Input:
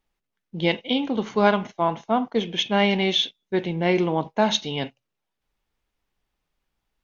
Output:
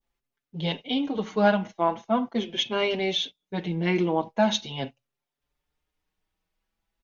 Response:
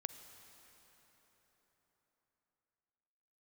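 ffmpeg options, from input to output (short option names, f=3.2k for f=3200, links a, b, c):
-filter_complex "[0:a]adynamicequalizer=threshold=0.0158:dfrequency=2100:dqfactor=1:tfrequency=2100:tqfactor=1:attack=5:release=100:ratio=0.375:range=2.5:mode=cutabove:tftype=bell,asplit=2[a][b];[b]adelay=5.4,afreqshift=0.41[c];[a][c]amix=inputs=2:normalize=1"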